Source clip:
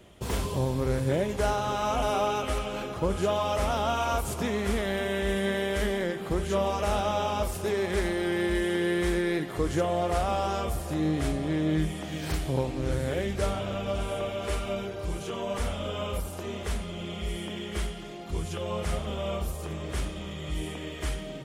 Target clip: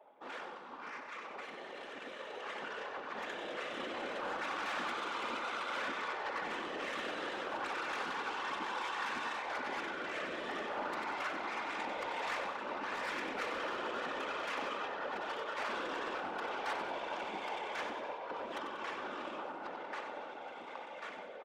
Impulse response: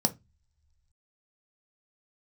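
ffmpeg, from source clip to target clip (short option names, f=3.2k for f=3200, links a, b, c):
-filter_complex "[0:a]lowpass=2.5k,aemphasis=mode=production:type=riaa,afftfilt=real='re*lt(hypot(re,im),0.0447)':imag='im*lt(hypot(re,im),0.0447)':win_size=1024:overlap=0.75,adynamicsmooth=sensitivity=3:basefreq=650,aecho=1:1:3.3:0.59,dynaudnorm=f=380:g=17:m=10dB,asoftclip=type=hard:threshold=-27dB,afreqshift=240,asoftclip=type=tanh:threshold=-32dB,tiltshelf=f=720:g=-4.5,afftfilt=real='hypot(re,im)*cos(2*PI*random(0))':imag='hypot(re,im)*sin(2*PI*random(1))':win_size=512:overlap=0.75,asplit=2[a][b];[b]aecho=0:1:94|188|282|376|470|564:0.355|0.181|0.0923|0.0471|0.024|0.0122[c];[a][c]amix=inputs=2:normalize=0,volume=4dB"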